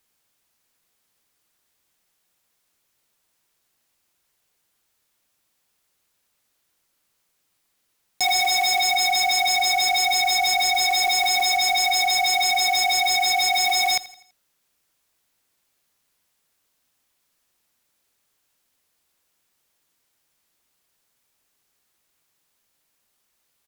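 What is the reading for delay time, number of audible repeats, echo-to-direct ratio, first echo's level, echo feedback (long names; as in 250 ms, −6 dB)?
83 ms, 3, −17.0 dB, −18.0 dB, 44%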